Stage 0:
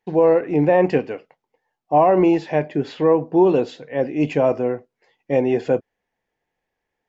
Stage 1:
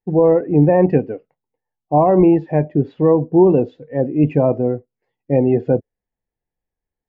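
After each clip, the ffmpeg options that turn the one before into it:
ffmpeg -i in.wav -af "afftdn=noise_reduction=13:noise_floor=-29,aemphasis=mode=reproduction:type=riaa,volume=-1dB" out.wav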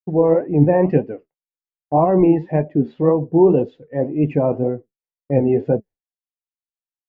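ffmpeg -i in.wav -af "flanger=delay=4.5:depth=8.8:regen=62:speed=1.9:shape=sinusoidal,agate=range=-33dB:threshold=-37dB:ratio=3:detection=peak,volume=2.5dB" out.wav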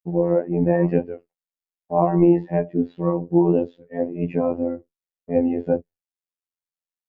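ffmpeg -i in.wav -af "afftfilt=real='hypot(re,im)*cos(PI*b)':imag='0':win_size=2048:overlap=0.75" out.wav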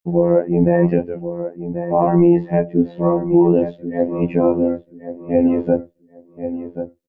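ffmpeg -i in.wav -filter_complex "[0:a]asplit=2[link_01][link_02];[link_02]adelay=1083,lowpass=frequency=1900:poles=1,volume=-11dB,asplit=2[link_03][link_04];[link_04]adelay=1083,lowpass=frequency=1900:poles=1,volume=0.2,asplit=2[link_05][link_06];[link_06]adelay=1083,lowpass=frequency=1900:poles=1,volume=0.2[link_07];[link_03][link_05][link_07]amix=inputs=3:normalize=0[link_08];[link_01][link_08]amix=inputs=2:normalize=0,alimiter=level_in=8dB:limit=-1dB:release=50:level=0:latency=1,volume=-2.5dB" out.wav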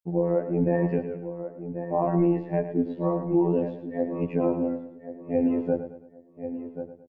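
ffmpeg -i in.wav -af "aecho=1:1:109|218|327|436:0.299|0.119|0.0478|0.0191,volume=-9dB" out.wav

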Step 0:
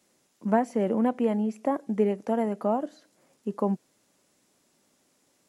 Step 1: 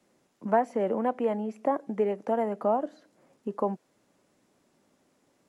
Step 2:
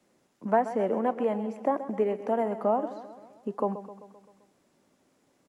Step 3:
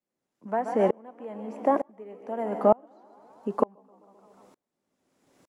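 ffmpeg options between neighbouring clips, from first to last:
ffmpeg -i in.wav -filter_complex "[0:a]highshelf=frequency=2800:gain=-12,acrossover=split=420|670[link_01][link_02][link_03];[link_01]acompressor=threshold=-37dB:ratio=6[link_04];[link_04][link_02][link_03]amix=inputs=3:normalize=0,volume=3dB" out.wav
ffmpeg -i in.wav -af "aecho=1:1:130|260|390|520|650|780:0.224|0.128|0.0727|0.0415|0.0236|0.0135" out.wav
ffmpeg -i in.wav -filter_complex "[0:a]asplit=6[link_01][link_02][link_03][link_04][link_05][link_06];[link_02]adelay=150,afreqshift=61,volume=-15dB[link_07];[link_03]adelay=300,afreqshift=122,volume=-20.4dB[link_08];[link_04]adelay=450,afreqshift=183,volume=-25.7dB[link_09];[link_05]adelay=600,afreqshift=244,volume=-31.1dB[link_10];[link_06]adelay=750,afreqshift=305,volume=-36.4dB[link_11];[link_01][link_07][link_08][link_09][link_10][link_11]amix=inputs=6:normalize=0,aeval=exprs='val(0)*pow(10,-33*if(lt(mod(-1.1*n/s,1),2*abs(-1.1)/1000),1-mod(-1.1*n/s,1)/(2*abs(-1.1)/1000),(mod(-1.1*n/s,1)-2*abs(-1.1)/1000)/(1-2*abs(-1.1)/1000))/20)':channel_layout=same,volume=8dB" out.wav

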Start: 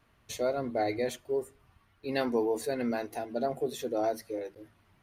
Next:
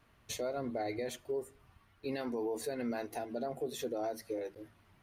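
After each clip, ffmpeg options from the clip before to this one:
ffmpeg -i in.wav -af "alimiter=level_in=4dB:limit=-24dB:level=0:latency=1:release=181,volume=-4dB" out.wav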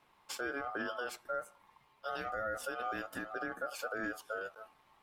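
ffmpeg -i in.wav -af "aeval=exprs='val(0)*sin(2*PI*980*n/s)':channel_layout=same,volume=1dB" out.wav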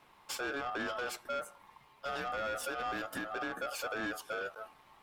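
ffmpeg -i in.wav -af "asoftclip=type=tanh:threshold=-38dB,volume=6dB" out.wav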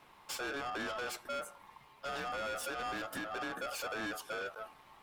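ffmpeg -i in.wav -af "asoftclip=type=tanh:threshold=-37dB,volume=2dB" out.wav

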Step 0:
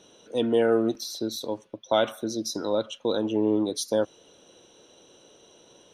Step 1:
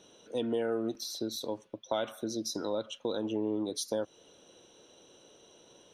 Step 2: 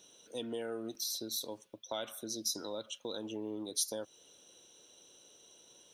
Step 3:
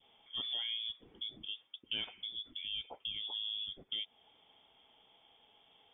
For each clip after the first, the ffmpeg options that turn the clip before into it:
ffmpeg -i in.wav -af "acompressor=threshold=-27dB:ratio=2.5,volume=-3.5dB" out.wav
ffmpeg -i in.wav -af "crystalizer=i=4:c=0,volume=-8.5dB" out.wav
ffmpeg -i in.wav -af "lowpass=frequency=3100:width_type=q:width=0.5098,lowpass=frequency=3100:width_type=q:width=0.6013,lowpass=frequency=3100:width_type=q:width=0.9,lowpass=frequency=3100:width_type=q:width=2.563,afreqshift=-3700,adynamicequalizer=threshold=0.00112:dfrequency=1200:dqfactor=0.93:tfrequency=1200:tqfactor=0.93:attack=5:release=100:ratio=0.375:range=2:mode=cutabove:tftype=bell,volume=1dB" out.wav

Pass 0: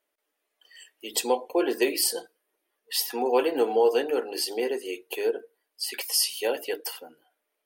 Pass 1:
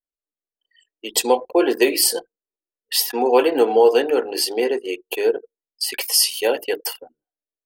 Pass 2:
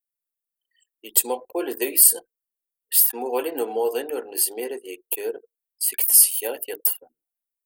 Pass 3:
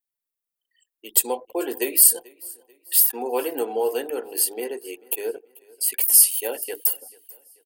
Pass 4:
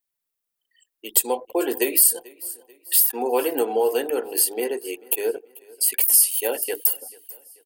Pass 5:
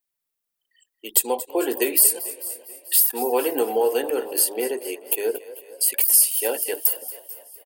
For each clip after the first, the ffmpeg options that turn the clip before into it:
ffmpeg -i in.wav -af "anlmdn=1,volume=7.5dB" out.wav
ffmpeg -i in.wav -af "aexciter=amount=8.5:drive=3.6:freq=7700,volume=-10dB" out.wav
ffmpeg -i in.wav -af "aecho=1:1:438|876|1314:0.0668|0.0267|0.0107" out.wav
ffmpeg -i in.wav -af "acompressor=threshold=-22dB:ratio=2,volume=4.5dB" out.wav
ffmpeg -i in.wav -filter_complex "[0:a]asplit=6[link_01][link_02][link_03][link_04][link_05][link_06];[link_02]adelay=230,afreqshift=38,volume=-16dB[link_07];[link_03]adelay=460,afreqshift=76,volume=-21.5dB[link_08];[link_04]adelay=690,afreqshift=114,volume=-27dB[link_09];[link_05]adelay=920,afreqshift=152,volume=-32.5dB[link_10];[link_06]adelay=1150,afreqshift=190,volume=-38.1dB[link_11];[link_01][link_07][link_08][link_09][link_10][link_11]amix=inputs=6:normalize=0" out.wav

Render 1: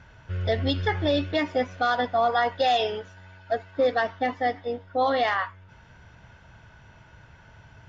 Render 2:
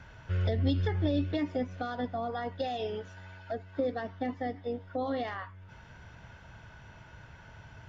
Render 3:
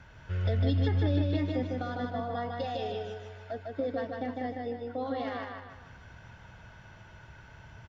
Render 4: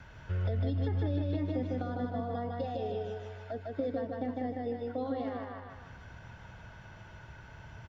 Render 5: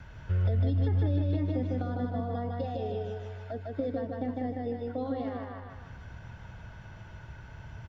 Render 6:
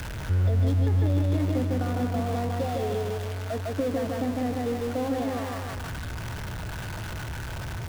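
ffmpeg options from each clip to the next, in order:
ffmpeg -i in.wav -filter_complex "[0:a]acrossover=split=360[link_01][link_02];[link_02]acompressor=threshold=-38dB:ratio=5[link_03];[link_01][link_03]amix=inputs=2:normalize=0" out.wav
ffmpeg -i in.wav -af "aecho=1:1:152|304|456|608|760|912:0.708|0.304|0.131|0.0563|0.0242|0.0104,volume=-2dB" out.wav
ffmpeg -i in.wav -filter_complex "[0:a]acrossover=split=560|1300[link_01][link_02][link_03];[link_01]acompressor=threshold=-31dB:ratio=4[link_04];[link_02]acompressor=threshold=-46dB:ratio=4[link_05];[link_03]acompressor=threshold=-58dB:ratio=4[link_06];[link_04][link_05][link_06]amix=inputs=3:normalize=0,volume=1.5dB" out.wav
ffmpeg -i in.wav -af "lowshelf=frequency=190:gain=6.5" out.wav
ffmpeg -i in.wav -af "aeval=exprs='val(0)+0.5*0.0211*sgn(val(0))':channel_layout=same,volume=2.5dB" out.wav

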